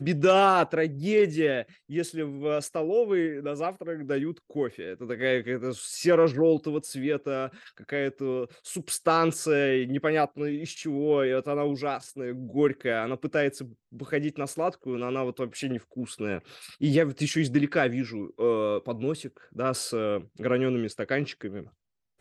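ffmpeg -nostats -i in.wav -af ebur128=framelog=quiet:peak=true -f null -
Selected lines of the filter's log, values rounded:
Integrated loudness:
  I:         -27.4 LUFS
  Threshold: -37.6 LUFS
Loudness range:
  LRA:         3.7 LU
  Threshold: -48.0 LUFS
  LRA low:   -30.1 LUFS
  LRA high:  -26.4 LUFS
True peak:
  Peak:       -9.1 dBFS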